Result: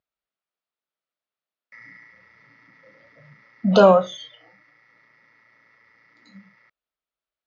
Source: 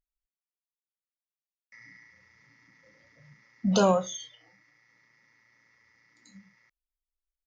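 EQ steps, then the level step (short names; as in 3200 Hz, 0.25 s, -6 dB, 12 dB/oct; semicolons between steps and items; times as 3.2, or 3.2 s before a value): speaker cabinet 120–4300 Hz, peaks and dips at 450 Hz +3 dB, 630 Hz +7 dB, 1300 Hz +6 dB; +6.0 dB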